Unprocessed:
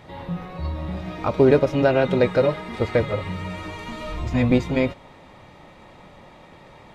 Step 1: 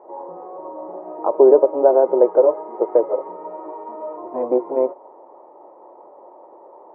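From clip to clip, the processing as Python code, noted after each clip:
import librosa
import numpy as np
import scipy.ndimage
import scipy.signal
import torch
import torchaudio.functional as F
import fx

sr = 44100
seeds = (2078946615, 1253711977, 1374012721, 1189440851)

y = scipy.signal.sosfilt(scipy.signal.cheby1(3, 1.0, [350.0, 990.0], 'bandpass', fs=sr, output='sos'), x)
y = y * 10.0 ** (6.0 / 20.0)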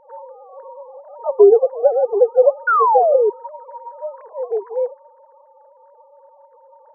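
y = fx.sine_speech(x, sr)
y = fx.spec_paint(y, sr, seeds[0], shape='fall', start_s=2.67, length_s=0.63, low_hz=400.0, high_hz=1500.0, level_db=-14.0)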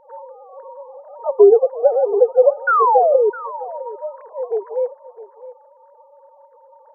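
y = x + 10.0 ** (-16.5 / 20.0) * np.pad(x, (int(659 * sr / 1000.0), 0))[:len(x)]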